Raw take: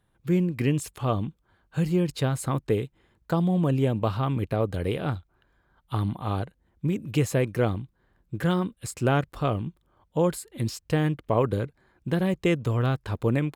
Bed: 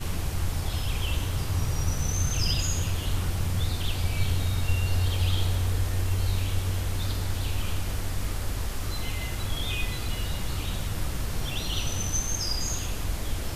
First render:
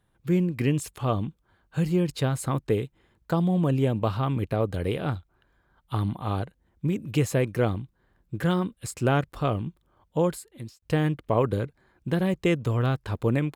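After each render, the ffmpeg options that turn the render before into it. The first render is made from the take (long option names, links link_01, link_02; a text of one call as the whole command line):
ffmpeg -i in.wav -filter_complex "[0:a]asplit=2[link_01][link_02];[link_01]atrim=end=10.82,asetpts=PTS-STARTPTS,afade=type=out:start_time=10.19:duration=0.63[link_03];[link_02]atrim=start=10.82,asetpts=PTS-STARTPTS,afade=type=in:duration=0.004:curve=hsin[link_04];[link_03][link_04]concat=n=2:v=0:a=1" out.wav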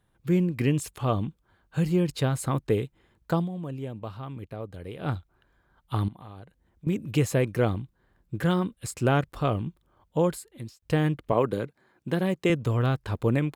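ffmpeg -i in.wav -filter_complex "[0:a]asettb=1/sr,asplit=3[link_01][link_02][link_03];[link_01]atrim=end=6.084[link_04];[link_02]atrim=start=6.08:end=6.87,asetpts=PTS-STARTPTS,afade=type=in:duration=0.004:curve=qsin,afade=type=out:start_time=0.786:duration=0.004:curve=qsin,acompressor=threshold=-44dB:ratio=4:attack=3.2:release=140:knee=1:detection=peak[link_05];[link_03]atrim=start=6.866[link_06];[link_04][link_05]acrossfade=duration=0.004:curve1=hsin:curve2=qsin[link_07];[link_07][link_06]acrossfade=duration=0.004:curve1=qsin:curve2=hsin,asettb=1/sr,asplit=3[link_08][link_09][link_10];[link_08]atrim=end=11.324[link_11];[link_09]atrim=start=11.32:end=12.5,asetpts=PTS-STARTPTS,afade=type=in:duration=0.004:curve=qsin,afade=type=out:start_time=1.176:duration=0.004:curve=qsin,highpass=160[link_12];[link_10]atrim=start=12.496[link_13];[link_11][link_12]acrossfade=duration=0.004:curve1=hsin:curve2=qsin[link_14];[link_14][link_13]acrossfade=duration=0.004:curve1=qsin:curve2=hsin,asplit=3[link_15][link_16][link_17];[link_15]atrim=end=3.49,asetpts=PTS-STARTPTS,afade=type=out:start_time=3.36:duration=0.13:silence=0.266073[link_18];[link_16]atrim=start=3.49:end=4.97,asetpts=PTS-STARTPTS,volume=-11.5dB[link_19];[link_17]atrim=start=4.97,asetpts=PTS-STARTPTS,afade=type=in:duration=0.13:silence=0.266073[link_20];[link_18][link_19][link_20]concat=n=3:v=0:a=1" out.wav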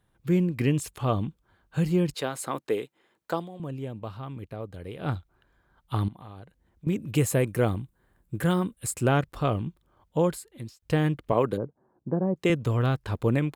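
ffmpeg -i in.wav -filter_complex "[0:a]asettb=1/sr,asplit=3[link_01][link_02][link_03];[link_01]atrim=end=2.144[link_04];[link_02]atrim=start=2.14:end=3.6,asetpts=PTS-STARTPTS,afade=type=in:duration=0.004:curve=qsin,afade=type=out:start_time=1.456:duration=0.004:curve=qsin,highpass=340[link_05];[link_03]atrim=start=3.596[link_06];[link_04][link_05]acrossfade=duration=0.004:curve1=hsin:curve2=qsin[link_07];[link_07][link_06]acrossfade=duration=0.004:curve1=qsin:curve2=hsin,asettb=1/sr,asplit=3[link_08][link_09][link_10];[link_08]atrim=end=7.154[link_11];[link_09]atrim=start=7.15:end=9.06,asetpts=PTS-STARTPTS,afade=type=in:duration=0.004:curve=qsin,afade=type=out:start_time=1.906:duration=0.004:curve=qsin,highshelf=frequency=6900:width_type=q:width=1.5:gain=6[link_12];[link_10]atrim=start=9.056[link_13];[link_11][link_12]acrossfade=duration=0.004:curve1=hsin:curve2=qsin[link_14];[link_14][link_13]acrossfade=duration=0.004:curve1=qsin:curve2=hsin,asplit=3[link_15][link_16][link_17];[link_15]afade=type=out:start_time=11.56:duration=0.02[link_18];[link_16]lowpass=frequency=1000:width=0.5412,lowpass=frequency=1000:width=1.3066,afade=type=in:start_time=11.56:duration=0.02,afade=type=out:start_time=12.35:duration=0.02[link_19];[link_17]afade=type=in:start_time=12.35:duration=0.02[link_20];[link_18][link_19][link_20]amix=inputs=3:normalize=0" out.wav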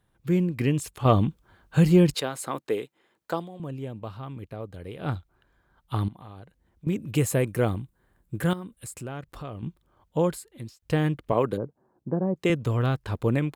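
ffmpeg -i in.wav -filter_complex "[0:a]asettb=1/sr,asplit=3[link_01][link_02][link_03];[link_01]atrim=end=1.054[link_04];[link_02]atrim=start=1.05:end=2.2,asetpts=PTS-STARTPTS,afade=type=in:duration=0.004:curve=qsin,afade=type=out:start_time=1.146:duration=0.004:curve=qsin,acontrast=72[link_05];[link_03]atrim=start=2.196[link_06];[link_04][link_05]acrossfade=duration=0.004:curve1=hsin:curve2=qsin[link_07];[link_07][link_06]acrossfade=duration=0.004:curve1=qsin:curve2=hsin,asettb=1/sr,asplit=3[link_08][link_09][link_10];[link_08]atrim=end=8.534[link_11];[link_09]atrim=start=8.53:end=9.63,asetpts=PTS-STARTPTS,afade=type=in:duration=0.004:curve=qsin,afade=type=out:start_time=1.096:duration=0.004:curve=qsin,acompressor=threshold=-39dB:ratio=2.5:attack=3.2:release=140:knee=1:detection=peak[link_12];[link_10]atrim=start=9.626[link_13];[link_11][link_12]acrossfade=duration=0.004:curve1=hsin:curve2=qsin[link_14];[link_14][link_13]acrossfade=duration=0.004:curve1=qsin:curve2=hsin" out.wav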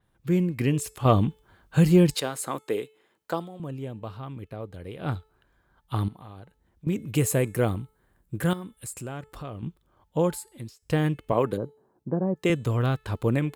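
ffmpeg -i in.wav -af "bandreject=frequency=434.7:width_type=h:width=4,bandreject=frequency=869.4:width_type=h:width=4,bandreject=frequency=1304.1:width_type=h:width=4,bandreject=frequency=1738.8:width_type=h:width=4,bandreject=frequency=2173.5:width_type=h:width=4,bandreject=frequency=2608.2:width_type=h:width=4,bandreject=frequency=3042.9:width_type=h:width=4,bandreject=frequency=3477.6:width_type=h:width=4,bandreject=frequency=3912.3:width_type=h:width=4,bandreject=frequency=4347:width_type=h:width=4,bandreject=frequency=4781.7:width_type=h:width=4,bandreject=frequency=5216.4:width_type=h:width=4,bandreject=frequency=5651.1:width_type=h:width=4,bandreject=frequency=6085.8:width_type=h:width=4,bandreject=frequency=6520.5:width_type=h:width=4,bandreject=frequency=6955.2:width_type=h:width=4,bandreject=frequency=7389.9:width_type=h:width=4,bandreject=frequency=7824.6:width_type=h:width=4,bandreject=frequency=8259.3:width_type=h:width=4,bandreject=frequency=8694:width_type=h:width=4,bandreject=frequency=9128.7:width_type=h:width=4,bandreject=frequency=9563.4:width_type=h:width=4,bandreject=frequency=9998.1:width_type=h:width=4,bandreject=frequency=10432.8:width_type=h:width=4,bandreject=frequency=10867.5:width_type=h:width=4,bandreject=frequency=11302.2:width_type=h:width=4,bandreject=frequency=11736.9:width_type=h:width=4,adynamicequalizer=threshold=0.00355:dfrequency=6400:dqfactor=0.7:tfrequency=6400:tqfactor=0.7:attack=5:release=100:ratio=0.375:range=2:mode=boostabove:tftype=highshelf" out.wav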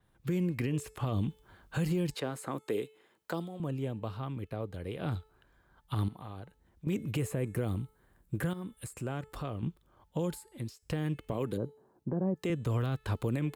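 ffmpeg -i in.wav -filter_complex "[0:a]acrossover=split=400|2700[link_01][link_02][link_03];[link_01]acompressor=threshold=-28dB:ratio=4[link_04];[link_02]acompressor=threshold=-37dB:ratio=4[link_05];[link_03]acompressor=threshold=-48dB:ratio=4[link_06];[link_04][link_05][link_06]amix=inputs=3:normalize=0,alimiter=limit=-23dB:level=0:latency=1:release=46" out.wav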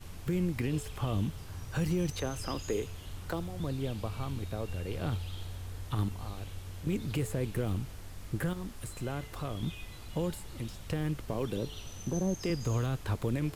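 ffmpeg -i in.wav -i bed.wav -filter_complex "[1:a]volume=-15.5dB[link_01];[0:a][link_01]amix=inputs=2:normalize=0" out.wav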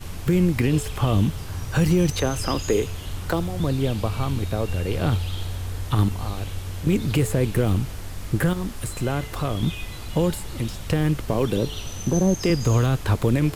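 ffmpeg -i in.wav -af "volume=11.5dB" out.wav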